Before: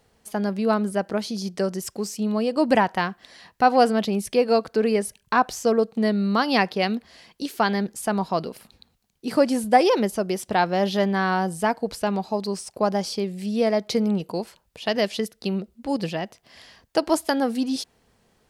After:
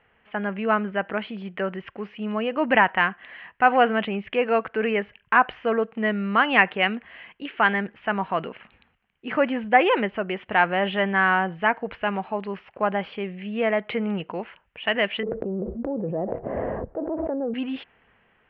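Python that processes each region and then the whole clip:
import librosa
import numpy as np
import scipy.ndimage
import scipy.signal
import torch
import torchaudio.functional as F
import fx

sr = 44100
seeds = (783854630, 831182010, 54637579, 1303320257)

y = fx.chain(x, sr, fx.ladder_lowpass(hz=600.0, resonance_pct=45),
    fx.env_flatten(amount_pct=100), at=(15.23, 17.54))
y = scipy.signal.sosfilt(scipy.signal.cheby1(5, 1.0, 3000.0, 'lowpass', fs=sr, output='sos'), y)
y = fx.transient(y, sr, attack_db=-2, sustain_db=2)
y = fx.peak_eq(y, sr, hz=1900.0, db=13.5, octaves=2.4)
y = y * 10.0 ** (-5.0 / 20.0)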